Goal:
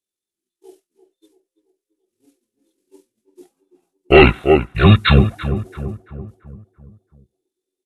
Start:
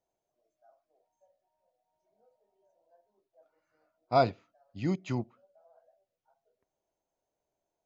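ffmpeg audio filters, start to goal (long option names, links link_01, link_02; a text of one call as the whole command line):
ffmpeg -i in.wav -filter_complex "[0:a]agate=range=-33dB:threshold=-58dB:ratio=3:detection=peak,crystalizer=i=6:c=0,asetrate=24750,aresample=44100,atempo=1.7818,asplit=2[link_01][link_02];[link_02]adelay=337,lowpass=frequency=1400:poles=1,volume=-11dB,asplit=2[link_03][link_04];[link_04]adelay=337,lowpass=frequency=1400:poles=1,volume=0.53,asplit=2[link_05][link_06];[link_06]adelay=337,lowpass=frequency=1400:poles=1,volume=0.53,asplit=2[link_07][link_08];[link_08]adelay=337,lowpass=frequency=1400:poles=1,volume=0.53,asplit=2[link_09][link_10];[link_10]adelay=337,lowpass=frequency=1400:poles=1,volume=0.53,asplit=2[link_11][link_12];[link_12]adelay=337,lowpass=frequency=1400:poles=1,volume=0.53[link_13];[link_01][link_03][link_05][link_07][link_09][link_11][link_13]amix=inputs=7:normalize=0,apsyclip=22.5dB,volume=-1.5dB" out.wav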